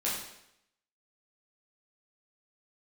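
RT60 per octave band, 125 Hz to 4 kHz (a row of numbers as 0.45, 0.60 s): 0.80, 0.75, 0.80, 0.80, 0.80, 0.75 s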